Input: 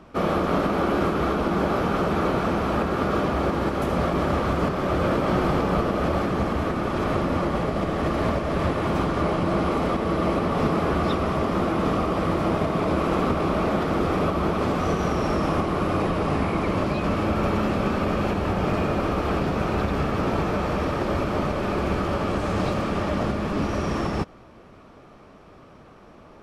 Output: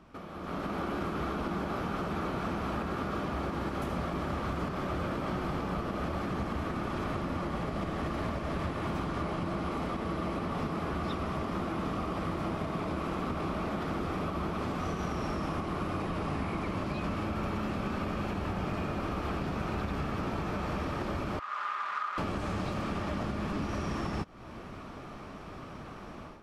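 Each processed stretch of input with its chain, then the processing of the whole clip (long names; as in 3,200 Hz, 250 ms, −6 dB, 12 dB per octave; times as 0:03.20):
0:21.39–0:22.18: sign of each sample alone + four-pole ladder band-pass 1,300 Hz, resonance 70% + comb filter 4.9 ms, depth 44%
whole clip: downward compressor, threshold −36 dBFS; parametric band 500 Hz −5 dB 0.94 octaves; automatic gain control gain up to 13 dB; level −7.5 dB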